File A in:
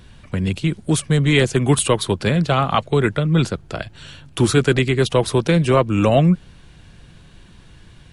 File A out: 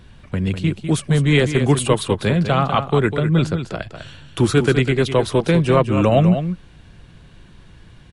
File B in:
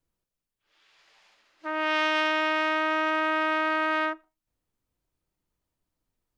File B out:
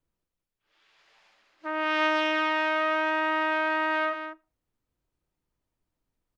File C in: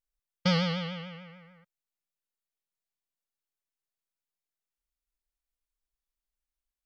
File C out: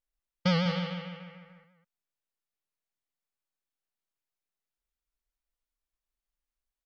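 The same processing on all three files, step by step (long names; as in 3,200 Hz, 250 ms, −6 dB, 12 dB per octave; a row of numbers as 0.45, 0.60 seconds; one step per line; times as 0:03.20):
high-shelf EQ 4,000 Hz −6 dB
on a send: single-tap delay 200 ms −9 dB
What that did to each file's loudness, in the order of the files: 0.0, −0.5, 0.0 LU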